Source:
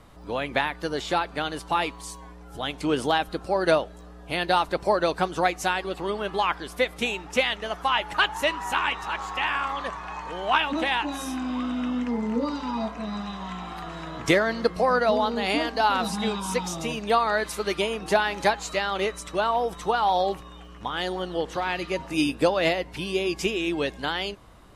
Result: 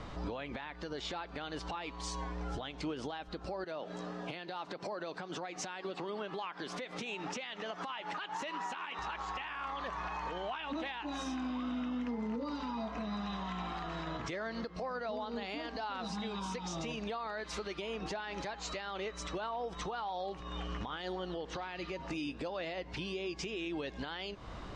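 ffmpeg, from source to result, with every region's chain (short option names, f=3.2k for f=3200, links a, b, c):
-filter_complex "[0:a]asettb=1/sr,asplit=3[a][b][c];[a]atrim=end=3.644[d];[b]atrim=start=3.64:end=8.99,asetpts=PTS-STARTPTS,afade=t=in:d=0.004:c=qsin,afade=t=out:st=5.346:d=0.004:c=qsin,acompressor=threshold=-39dB:ratio=2.5:attack=3.2:release=140:knee=1:detection=peak,highpass=f=140:w=0.5412,highpass=f=140:w=1.3066[e];[c]atrim=start=8.986[f];[d][e]acrossfade=d=0.004:c1=hsin:c2=qsin[g];[g][f]acrossfade=d=0.004:c1=qsin:c2=hsin,lowpass=f=6.2k:w=0.5412,lowpass=f=6.2k:w=1.3066,acompressor=threshold=-39dB:ratio=4,alimiter=level_in=13dB:limit=-24dB:level=0:latency=1:release=121,volume=-13dB,volume=6.5dB"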